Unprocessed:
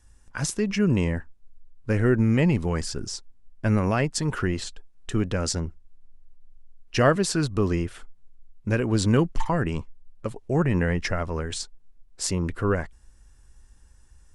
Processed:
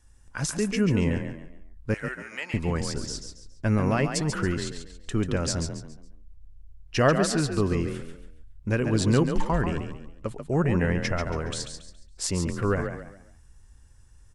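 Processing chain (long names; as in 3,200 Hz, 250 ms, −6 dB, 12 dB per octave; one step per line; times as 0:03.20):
0:01.94–0:02.54: high-pass filter 1,300 Hz 12 dB per octave
echo with shifted repeats 139 ms, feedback 33%, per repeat +33 Hz, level −7.5 dB
level −1.5 dB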